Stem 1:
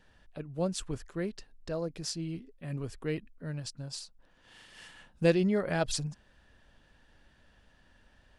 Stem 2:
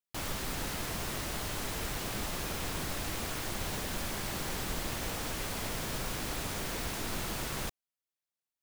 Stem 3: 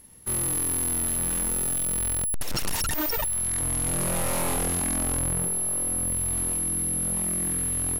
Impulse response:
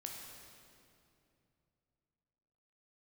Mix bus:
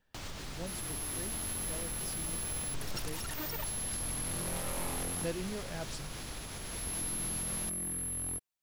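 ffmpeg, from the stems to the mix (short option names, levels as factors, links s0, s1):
-filter_complex "[0:a]volume=0.237,asplit=2[s0][s1];[1:a]acrossover=split=7400[s2][s3];[s3]acompressor=threshold=0.00178:ratio=4:attack=1:release=60[s4];[s2][s4]amix=inputs=2:normalize=0,alimiter=level_in=2.82:limit=0.0631:level=0:latency=1:release=307,volume=0.355,acrossover=split=140|3000[s5][s6][s7];[s6]acompressor=threshold=0.00355:ratio=3[s8];[s5][s8][s7]amix=inputs=3:normalize=0,volume=1.26[s9];[2:a]adelay=400,volume=1.06,afade=t=out:st=5.26:d=0.48:silence=0.298538,afade=t=in:st=6.64:d=0.35:silence=0.266073[s10];[s1]apad=whole_len=370204[s11];[s10][s11]sidechaincompress=threshold=0.00794:ratio=8:attack=16:release=1260[s12];[s0][s9][s12]amix=inputs=3:normalize=0"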